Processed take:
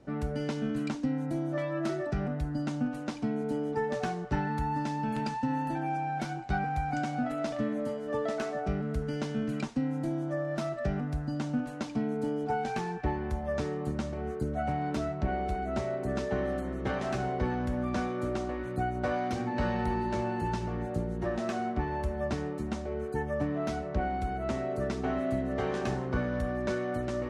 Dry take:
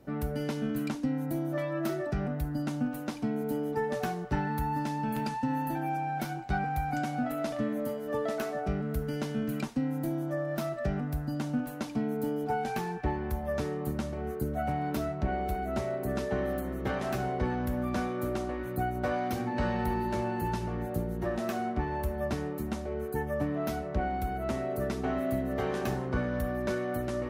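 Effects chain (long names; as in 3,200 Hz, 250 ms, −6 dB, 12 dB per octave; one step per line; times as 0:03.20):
low-pass filter 8,400 Hz 24 dB per octave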